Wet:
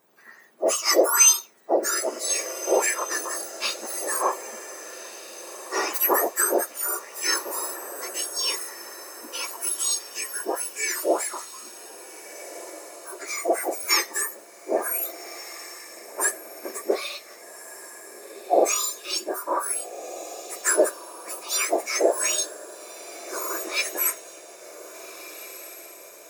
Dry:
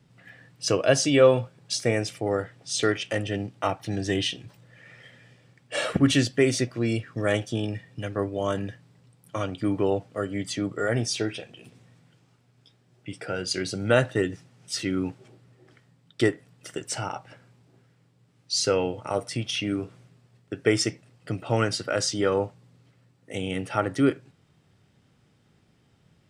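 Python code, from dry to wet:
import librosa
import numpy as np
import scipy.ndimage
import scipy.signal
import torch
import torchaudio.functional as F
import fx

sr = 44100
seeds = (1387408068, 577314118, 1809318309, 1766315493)

y = fx.octave_mirror(x, sr, pivot_hz=1800.0)
y = fx.echo_diffused(y, sr, ms=1588, feedback_pct=48, wet_db=-13.5)
y = y * librosa.db_to_amplitude(4.5)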